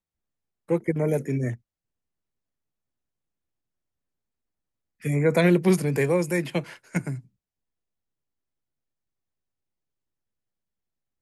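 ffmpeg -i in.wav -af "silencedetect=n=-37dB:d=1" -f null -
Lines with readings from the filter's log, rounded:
silence_start: 1.55
silence_end: 5.04 | silence_duration: 3.49
silence_start: 7.20
silence_end: 11.21 | silence_duration: 4.02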